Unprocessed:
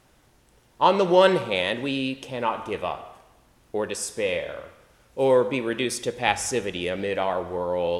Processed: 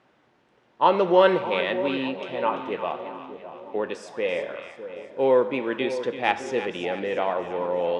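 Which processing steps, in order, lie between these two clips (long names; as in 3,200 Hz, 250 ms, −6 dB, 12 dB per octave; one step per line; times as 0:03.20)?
band-pass filter 200–2,800 Hz
echo with a time of its own for lows and highs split 850 Hz, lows 607 ms, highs 338 ms, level −11 dB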